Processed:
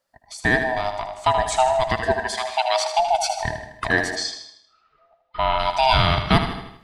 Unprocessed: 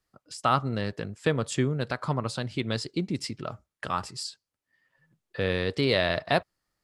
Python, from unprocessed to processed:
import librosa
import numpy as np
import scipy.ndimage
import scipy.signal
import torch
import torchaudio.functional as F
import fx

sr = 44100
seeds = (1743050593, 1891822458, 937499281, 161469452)

y = fx.band_swap(x, sr, width_hz=500)
y = fx.highpass(y, sr, hz=fx.line((2.13, 1100.0), (2.98, 370.0)), slope=24, at=(2.13, 2.98), fade=0.02)
y = fx.echo_feedback(y, sr, ms=78, feedback_pct=47, wet_db=-9)
y = fx.rev_plate(y, sr, seeds[0], rt60_s=0.71, hf_ratio=0.9, predelay_ms=95, drr_db=14.0)
y = fx.rider(y, sr, range_db=5, speed_s=2.0)
y = fx.lowpass(y, sr, hz=fx.line((4.15, 7000.0), (5.58, 3400.0)), slope=24, at=(4.15, 5.58), fade=0.02)
y = y * librosa.db_to_amplitude(6.5)